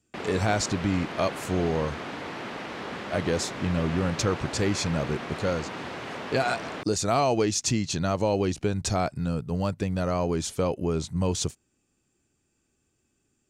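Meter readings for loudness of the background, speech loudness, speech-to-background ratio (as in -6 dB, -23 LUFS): -36.0 LUFS, -27.5 LUFS, 8.5 dB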